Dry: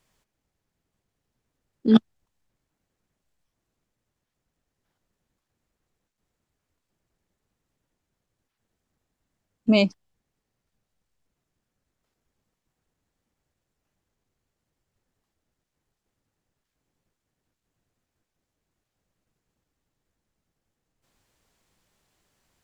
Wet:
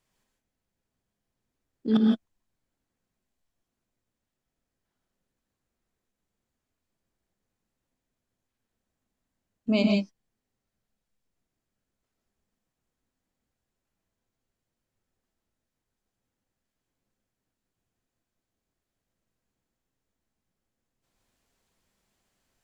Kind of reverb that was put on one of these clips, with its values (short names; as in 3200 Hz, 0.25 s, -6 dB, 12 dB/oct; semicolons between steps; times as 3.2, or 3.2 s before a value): non-linear reverb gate 0.19 s rising, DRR 0.5 dB; gain -7 dB